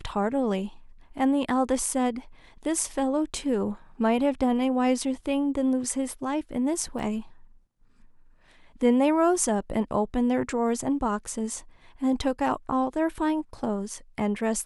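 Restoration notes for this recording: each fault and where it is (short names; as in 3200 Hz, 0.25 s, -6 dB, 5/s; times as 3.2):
6.99 gap 2.5 ms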